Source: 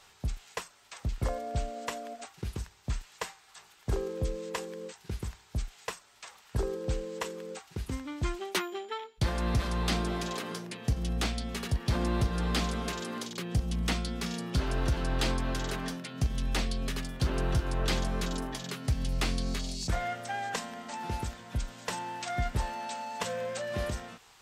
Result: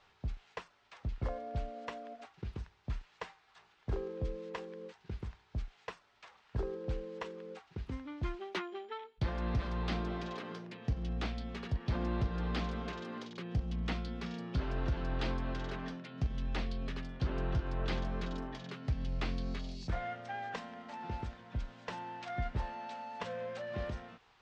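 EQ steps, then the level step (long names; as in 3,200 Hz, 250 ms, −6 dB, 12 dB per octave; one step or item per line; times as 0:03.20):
high-frequency loss of the air 210 metres
−5.0 dB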